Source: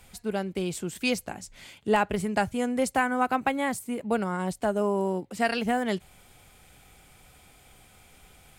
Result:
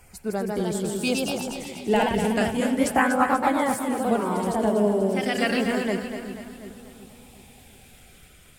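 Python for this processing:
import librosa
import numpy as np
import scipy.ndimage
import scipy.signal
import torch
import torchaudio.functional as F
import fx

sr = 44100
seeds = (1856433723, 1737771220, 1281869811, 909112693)

y = fx.spec_quant(x, sr, step_db=15)
y = fx.filter_lfo_notch(y, sr, shape='saw_down', hz=0.34, low_hz=650.0, high_hz=3700.0, q=1.8)
y = fx.echo_pitch(y, sr, ms=169, semitones=1, count=2, db_per_echo=-3.0)
y = fx.echo_split(y, sr, split_hz=410.0, low_ms=363, high_ms=243, feedback_pct=52, wet_db=-8)
y = F.gain(torch.from_numpy(y), 2.0).numpy()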